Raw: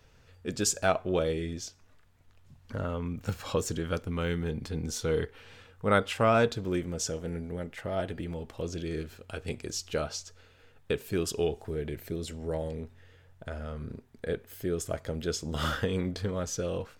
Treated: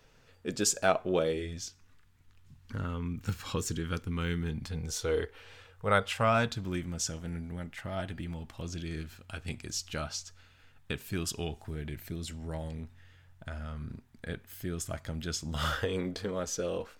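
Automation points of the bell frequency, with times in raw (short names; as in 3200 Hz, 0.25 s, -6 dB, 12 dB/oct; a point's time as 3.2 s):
bell -13 dB 0.86 oct
1.26 s 72 Hz
1.67 s 600 Hz
4.43 s 600 Hz
5.18 s 150 Hz
6.53 s 460 Hz
15.49 s 460 Hz
16.02 s 110 Hz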